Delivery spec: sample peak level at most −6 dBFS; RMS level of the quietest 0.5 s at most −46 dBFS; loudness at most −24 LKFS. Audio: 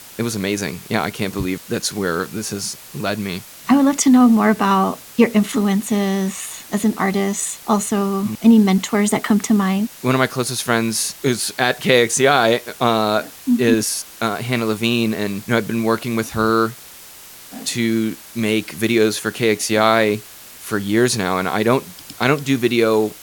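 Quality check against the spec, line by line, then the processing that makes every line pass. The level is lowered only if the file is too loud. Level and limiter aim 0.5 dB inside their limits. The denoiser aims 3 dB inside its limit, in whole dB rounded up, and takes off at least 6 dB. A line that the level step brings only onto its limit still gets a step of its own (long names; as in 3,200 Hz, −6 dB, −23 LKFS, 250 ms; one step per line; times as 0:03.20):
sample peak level −1.5 dBFS: out of spec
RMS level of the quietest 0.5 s −40 dBFS: out of spec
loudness −18.5 LKFS: out of spec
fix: broadband denoise 6 dB, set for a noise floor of −40 dBFS
level −6 dB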